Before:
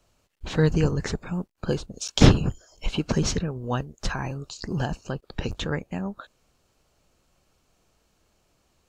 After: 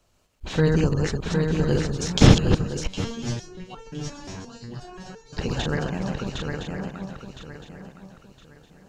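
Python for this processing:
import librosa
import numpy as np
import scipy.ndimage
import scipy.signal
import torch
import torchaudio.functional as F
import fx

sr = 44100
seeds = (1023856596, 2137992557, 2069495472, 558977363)

y = fx.reverse_delay(x, sr, ms=134, wet_db=-3)
y = fx.echo_swing(y, sr, ms=1013, ratio=3, feedback_pct=31, wet_db=-4.0)
y = fx.resonator_held(y, sr, hz=5.7, low_hz=95.0, high_hz=450.0, at=(2.87, 5.37))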